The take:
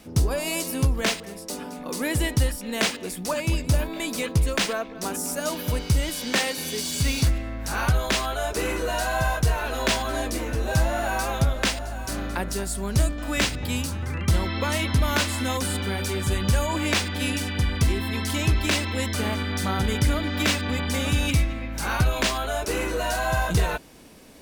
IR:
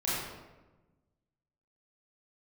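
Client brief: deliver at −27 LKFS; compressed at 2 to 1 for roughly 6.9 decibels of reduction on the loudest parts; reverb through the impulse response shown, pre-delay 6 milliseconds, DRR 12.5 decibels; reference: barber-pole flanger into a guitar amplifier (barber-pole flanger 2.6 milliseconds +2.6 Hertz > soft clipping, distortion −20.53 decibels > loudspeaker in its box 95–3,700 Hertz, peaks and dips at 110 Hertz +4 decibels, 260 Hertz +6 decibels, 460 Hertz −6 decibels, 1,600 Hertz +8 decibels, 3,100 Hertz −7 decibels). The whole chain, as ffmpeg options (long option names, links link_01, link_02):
-filter_complex "[0:a]acompressor=threshold=-29dB:ratio=2,asplit=2[link_01][link_02];[1:a]atrim=start_sample=2205,adelay=6[link_03];[link_02][link_03]afir=irnorm=-1:irlink=0,volume=-20.5dB[link_04];[link_01][link_04]amix=inputs=2:normalize=0,asplit=2[link_05][link_06];[link_06]adelay=2.6,afreqshift=2.6[link_07];[link_05][link_07]amix=inputs=2:normalize=1,asoftclip=threshold=-22.5dB,highpass=95,equalizer=frequency=110:width_type=q:width=4:gain=4,equalizer=frequency=260:width_type=q:width=4:gain=6,equalizer=frequency=460:width_type=q:width=4:gain=-6,equalizer=frequency=1600:width_type=q:width=4:gain=8,equalizer=frequency=3100:width_type=q:width=4:gain=-7,lowpass=frequency=3700:width=0.5412,lowpass=frequency=3700:width=1.3066,volume=7dB"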